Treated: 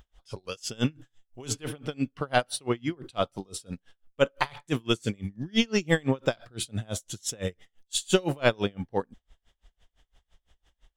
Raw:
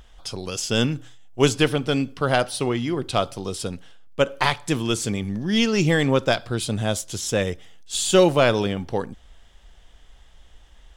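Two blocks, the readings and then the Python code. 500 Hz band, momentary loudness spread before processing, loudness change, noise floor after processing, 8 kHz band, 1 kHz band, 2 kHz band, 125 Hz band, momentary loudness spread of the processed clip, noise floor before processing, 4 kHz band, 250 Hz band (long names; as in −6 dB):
−7.5 dB, 12 LU, −7.0 dB, −80 dBFS, −6.5 dB, −7.0 dB, −6.0 dB, −7.5 dB, 13 LU, −51 dBFS, −7.0 dB, −7.0 dB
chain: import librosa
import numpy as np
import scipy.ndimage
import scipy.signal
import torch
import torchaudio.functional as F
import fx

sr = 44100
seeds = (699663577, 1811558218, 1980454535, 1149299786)

y = fx.noise_reduce_blind(x, sr, reduce_db=7)
y = y * 10.0 ** (-31 * (0.5 - 0.5 * np.cos(2.0 * np.pi * 5.9 * np.arange(len(y)) / sr)) / 20.0)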